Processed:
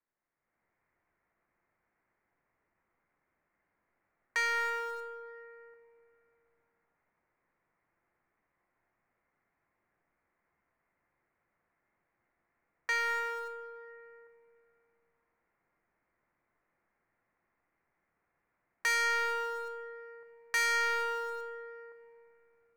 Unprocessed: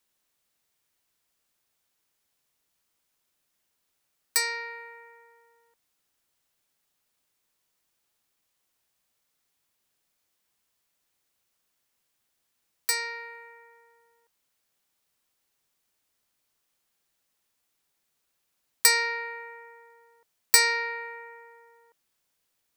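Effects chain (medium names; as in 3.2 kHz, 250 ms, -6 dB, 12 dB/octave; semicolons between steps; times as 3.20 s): elliptic low-pass 2.1 kHz, stop band 50 dB; level rider gain up to 12.5 dB; in parallel at -10 dB: small samples zeroed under -29 dBFS; on the sum: feedback comb 350 Hz, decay 0.37 s, harmonics all, mix 60%; saturation -27 dBFS, distortion -5 dB; on a send at -8 dB: reverberation RT60 2.8 s, pre-delay 6 ms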